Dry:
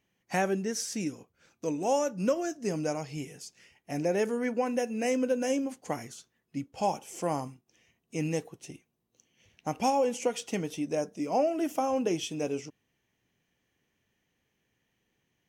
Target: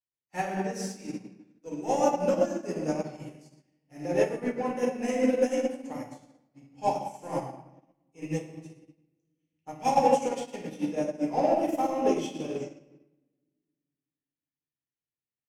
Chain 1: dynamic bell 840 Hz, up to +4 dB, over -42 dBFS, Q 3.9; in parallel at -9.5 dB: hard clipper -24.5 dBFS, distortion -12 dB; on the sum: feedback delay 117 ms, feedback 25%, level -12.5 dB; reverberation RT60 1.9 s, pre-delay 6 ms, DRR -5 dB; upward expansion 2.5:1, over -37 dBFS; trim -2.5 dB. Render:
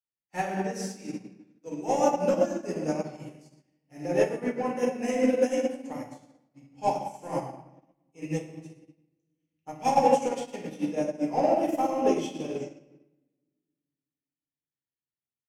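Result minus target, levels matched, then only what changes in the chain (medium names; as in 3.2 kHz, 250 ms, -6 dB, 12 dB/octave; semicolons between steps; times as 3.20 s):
hard clipper: distortion -7 dB
change: hard clipper -32 dBFS, distortion -6 dB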